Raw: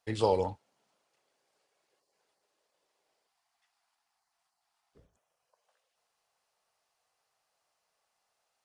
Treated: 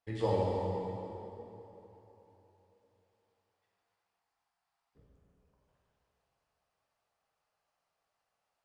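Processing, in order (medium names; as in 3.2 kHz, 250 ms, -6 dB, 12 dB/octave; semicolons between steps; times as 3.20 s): tone controls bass +6 dB, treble -7 dB; plate-style reverb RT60 3.4 s, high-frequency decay 0.7×, DRR -4.5 dB; trim -8.5 dB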